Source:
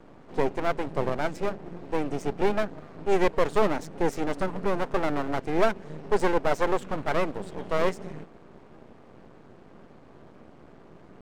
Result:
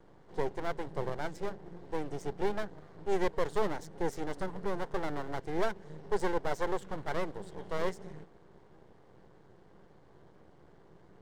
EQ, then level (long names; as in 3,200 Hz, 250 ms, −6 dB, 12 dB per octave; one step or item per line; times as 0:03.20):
thirty-one-band graphic EQ 250 Hz −12 dB, 630 Hz −5 dB, 1,250 Hz −5 dB, 2,500 Hz −8 dB
−6.0 dB